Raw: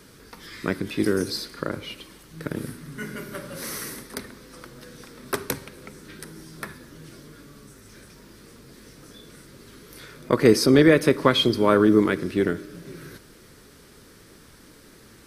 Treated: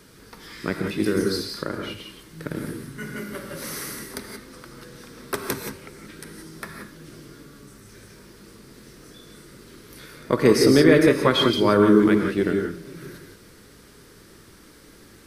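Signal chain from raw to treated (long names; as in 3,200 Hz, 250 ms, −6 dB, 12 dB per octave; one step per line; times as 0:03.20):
reverb whose tail is shaped and stops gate 200 ms rising, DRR 3 dB
level −1 dB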